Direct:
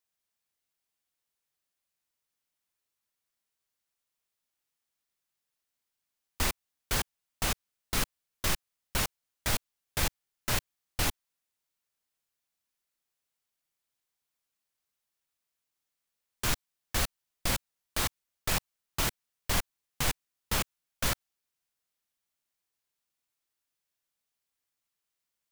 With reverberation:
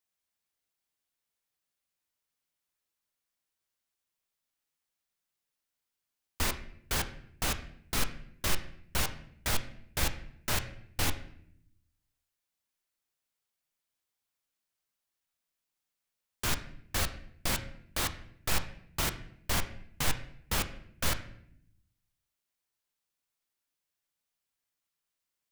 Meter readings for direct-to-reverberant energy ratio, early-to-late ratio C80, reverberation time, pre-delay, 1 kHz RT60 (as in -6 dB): 8.0 dB, 14.5 dB, 0.65 s, 12 ms, 0.60 s